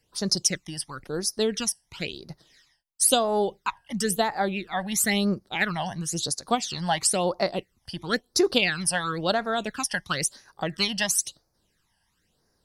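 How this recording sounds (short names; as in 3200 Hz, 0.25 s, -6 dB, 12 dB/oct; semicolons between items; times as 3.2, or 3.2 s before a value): phasing stages 12, 0.98 Hz, lowest notch 390–3000 Hz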